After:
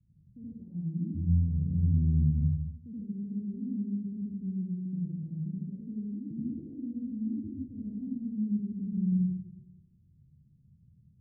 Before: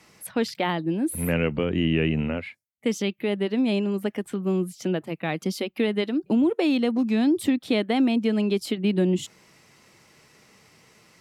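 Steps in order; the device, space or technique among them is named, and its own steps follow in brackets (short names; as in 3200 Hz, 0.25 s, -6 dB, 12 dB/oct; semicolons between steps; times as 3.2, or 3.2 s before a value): club heard from the street (limiter -16.5 dBFS, peak gain reduction 6 dB; LPF 130 Hz 24 dB/oct; reverb RT60 1.0 s, pre-delay 72 ms, DRR -7.5 dB); gain +2 dB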